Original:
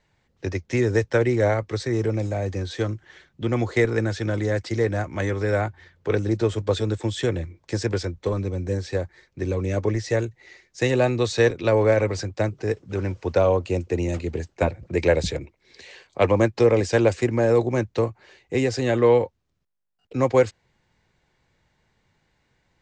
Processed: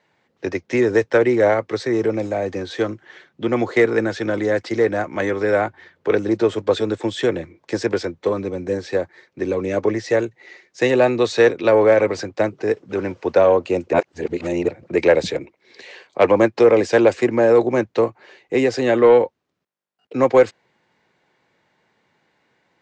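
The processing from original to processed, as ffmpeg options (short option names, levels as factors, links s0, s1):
-filter_complex "[0:a]asplit=3[s0][s1][s2];[s0]atrim=end=13.932[s3];[s1]atrim=start=13.928:end=14.682,asetpts=PTS-STARTPTS,areverse[s4];[s2]atrim=start=14.678[s5];[s3][s4]acrossfade=d=0.004:c1=hsin:c2=hsin[s6];[s6][s5]acrossfade=d=0.004:c1=hsin:c2=hsin,highpass=240,highshelf=f=5200:g=-12,acontrast=71"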